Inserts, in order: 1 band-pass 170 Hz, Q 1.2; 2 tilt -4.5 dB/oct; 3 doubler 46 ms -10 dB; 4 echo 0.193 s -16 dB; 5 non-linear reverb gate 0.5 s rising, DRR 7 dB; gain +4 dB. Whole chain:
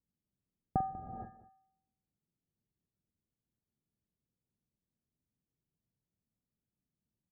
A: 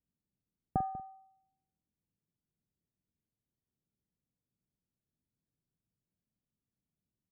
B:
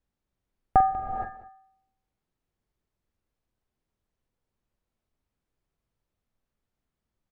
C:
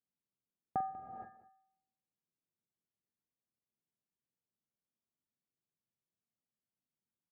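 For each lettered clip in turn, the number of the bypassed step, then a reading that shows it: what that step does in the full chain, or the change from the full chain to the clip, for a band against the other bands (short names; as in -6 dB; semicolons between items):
5, loudness change +1.0 LU; 1, 1 kHz band +11.0 dB; 2, 125 Hz band -9.5 dB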